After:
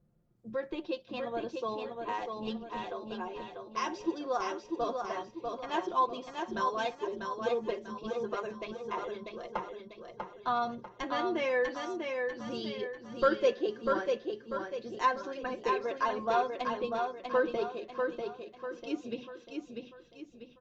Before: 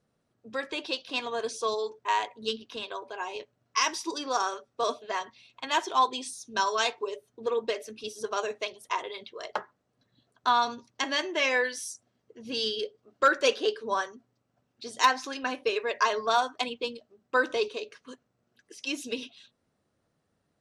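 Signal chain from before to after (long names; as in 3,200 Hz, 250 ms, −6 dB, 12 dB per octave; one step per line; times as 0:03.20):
spectral tilt −4.5 dB per octave
comb filter 5.7 ms, depth 66%
on a send: repeating echo 644 ms, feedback 42%, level −4.5 dB
on the sum: downsampling to 16,000 Hz
level −7.5 dB
Opus 48 kbit/s 48,000 Hz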